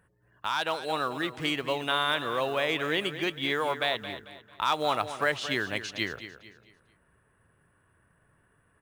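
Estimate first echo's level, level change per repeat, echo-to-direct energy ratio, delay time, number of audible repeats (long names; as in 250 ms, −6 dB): −12.0 dB, −9.0 dB, −11.5 dB, 223 ms, 3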